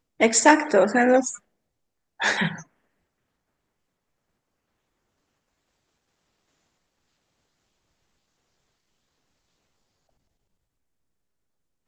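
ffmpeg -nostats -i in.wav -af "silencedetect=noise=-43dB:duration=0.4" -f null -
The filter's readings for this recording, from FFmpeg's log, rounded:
silence_start: 1.38
silence_end: 2.20 | silence_duration: 0.82
silence_start: 2.63
silence_end: 11.88 | silence_duration: 9.25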